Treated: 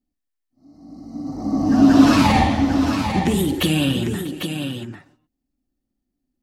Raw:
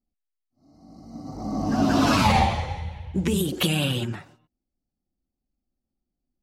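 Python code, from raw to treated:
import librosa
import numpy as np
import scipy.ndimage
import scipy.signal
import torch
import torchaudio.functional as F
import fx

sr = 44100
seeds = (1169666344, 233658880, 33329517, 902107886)

p1 = fx.small_body(x, sr, hz=(280.0, 1800.0), ring_ms=45, db=10)
p2 = p1 + fx.echo_multitap(p1, sr, ms=(51, 156, 643, 798), db=(-12.5, -19.0, -19.5, -7.0), dry=0)
y = F.gain(torch.from_numpy(p2), 1.5).numpy()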